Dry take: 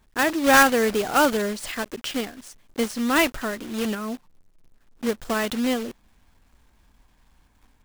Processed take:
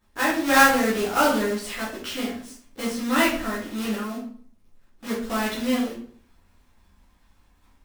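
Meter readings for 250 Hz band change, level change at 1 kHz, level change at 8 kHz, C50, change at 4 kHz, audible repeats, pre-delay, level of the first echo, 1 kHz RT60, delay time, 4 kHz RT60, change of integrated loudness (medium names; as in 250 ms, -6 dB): 0.0 dB, -0.5 dB, -1.5 dB, 4.0 dB, -1.0 dB, no echo, 9 ms, no echo, 0.45 s, no echo, 0.40 s, -0.5 dB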